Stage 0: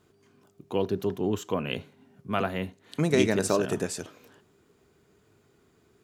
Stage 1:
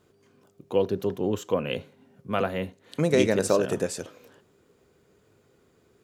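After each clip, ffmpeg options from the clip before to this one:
-af "equalizer=f=520:t=o:w=0.23:g=10"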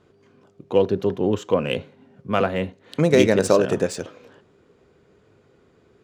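-af "adynamicsmooth=sensitivity=5.5:basefreq=5.3k,volume=5.5dB"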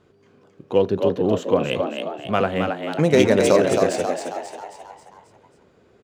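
-filter_complex "[0:a]asplit=7[a][b][c][d][e][f][g];[b]adelay=269,afreqshift=77,volume=-5dB[h];[c]adelay=538,afreqshift=154,volume=-11dB[i];[d]adelay=807,afreqshift=231,volume=-17dB[j];[e]adelay=1076,afreqshift=308,volume=-23.1dB[k];[f]adelay=1345,afreqshift=385,volume=-29.1dB[l];[g]adelay=1614,afreqshift=462,volume=-35.1dB[m];[a][h][i][j][k][l][m]amix=inputs=7:normalize=0"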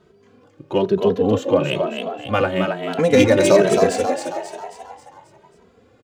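-filter_complex "[0:a]asplit=2[a][b];[b]adelay=2.7,afreqshift=1.1[c];[a][c]amix=inputs=2:normalize=1,volume=5.5dB"

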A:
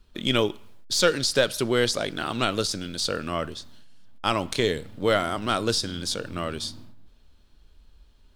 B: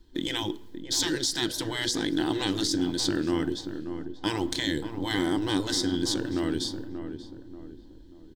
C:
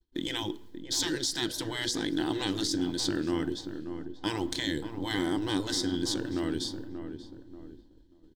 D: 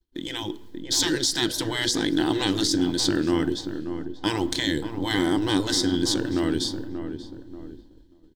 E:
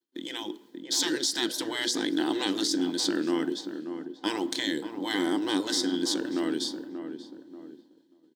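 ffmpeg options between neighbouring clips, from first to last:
-filter_complex "[0:a]afftfilt=real='re*lt(hypot(re,im),0.2)':imag='im*lt(hypot(re,im),0.2)':win_size=1024:overlap=0.75,superequalizer=6b=3.98:8b=0.501:10b=0.355:12b=0.355:16b=0.631,asplit=2[a][b];[b]adelay=585,lowpass=f=1.1k:p=1,volume=-8dB,asplit=2[c][d];[d]adelay=585,lowpass=f=1.1k:p=1,volume=0.44,asplit=2[e][f];[f]adelay=585,lowpass=f=1.1k:p=1,volume=0.44,asplit=2[g][h];[h]adelay=585,lowpass=f=1.1k:p=1,volume=0.44,asplit=2[i][j];[j]adelay=585,lowpass=f=1.1k:p=1,volume=0.44[k];[a][c][e][g][i][k]amix=inputs=6:normalize=0"
-af "agate=range=-33dB:threshold=-42dB:ratio=3:detection=peak,volume=-3dB"
-af "dynaudnorm=f=230:g=5:m=7dB"
-af "highpass=f=210:w=0.5412,highpass=f=210:w=1.3066,volume=-4dB"

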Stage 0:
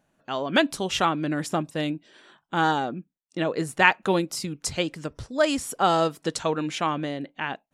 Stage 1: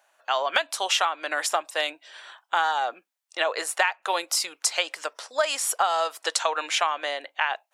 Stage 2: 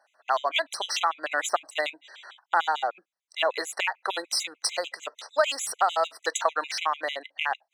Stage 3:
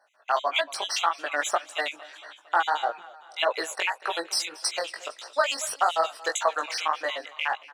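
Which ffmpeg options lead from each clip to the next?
-af "highpass=f=660:w=0.5412,highpass=f=660:w=1.3066,acompressor=threshold=-28dB:ratio=20,volume=9dB"
-af "adynamicsmooth=sensitivity=6:basefreq=7.5k,afftfilt=real='re*gt(sin(2*PI*6.7*pts/sr)*(1-2*mod(floor(b*sr/1024/2000),2)),0)':imag='im*gt(sin(2*PI*6.7*pts/sr)*(1-2*mod(floor(b*sr/1024/2000),2)),0)':win_size=1024:overlap=0.75,volume=1.5dB"
-af "aecho=1:1:228|456|684|912|1140:0.1|0.058|0.0336|0.0195|0.0113,flanger=delay=17:depth=4.1:speed=1.7,volume=3.5dB"

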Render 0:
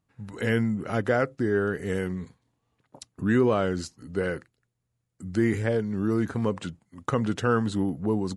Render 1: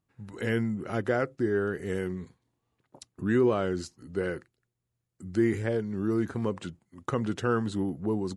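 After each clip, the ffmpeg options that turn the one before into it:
-af "equalizer=f=360:w=7.5:g=6.5,volume=-4dB"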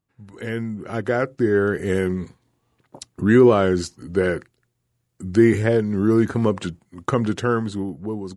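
-af "dynaudnorm=f=280:g=9:m=11.5dB"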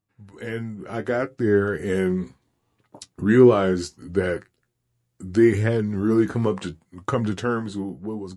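-af "flanger=delay=9.5:depth=6.9:regen=43:speed=0.7:shape=sinusoidal,volume=1.5dB"

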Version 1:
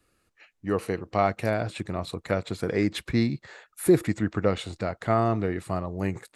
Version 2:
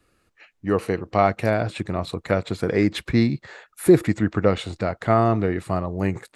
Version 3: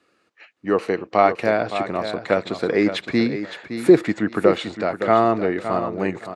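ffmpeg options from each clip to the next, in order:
-af "highshelf=f=5.5k:g=-5.5,volume=5dB"
-af "highpass=250,lowpass=6k,aecho=1:1:565|1130|1695:0.316|0.0601|0.0114,volume=3dB"

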